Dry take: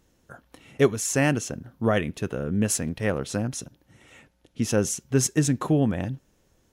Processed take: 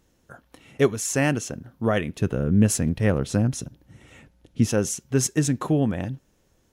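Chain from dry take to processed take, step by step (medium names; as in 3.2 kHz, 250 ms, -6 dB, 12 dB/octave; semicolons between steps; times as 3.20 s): 2.19–4.70 s: bass shelf 270 Hz +9.5 dB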